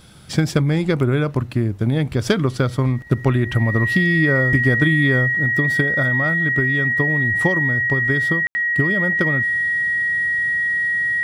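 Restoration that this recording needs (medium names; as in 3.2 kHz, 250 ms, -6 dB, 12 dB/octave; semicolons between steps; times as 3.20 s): band-stop 1.9 kHz, Q 30; room tone fill 8.47–8.55 s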